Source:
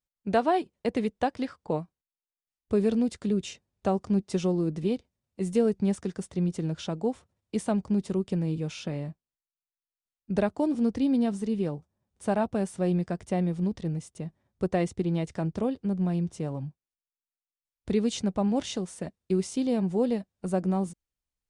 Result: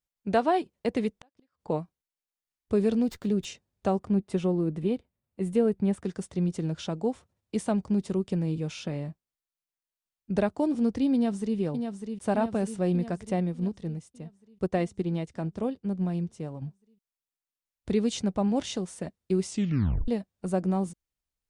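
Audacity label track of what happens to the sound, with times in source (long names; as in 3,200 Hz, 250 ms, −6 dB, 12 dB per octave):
1.110000	1.610000	gate with flip shuts at −27 dBFS, range −39 dB
3.020000	3.450000	windowed peak hold over 3 samples
3.990000	6.050000	parametric band 5,800 Hz −11.5 dB 1.1 octaves
11.140000	11.580000	delay throw 600 ms, feedback 65%, level −6.5 dB
13.400000	16.620000	expander for the loud parts, over −37 dBFS
19.480000	19.480000	tape stop 0.60 s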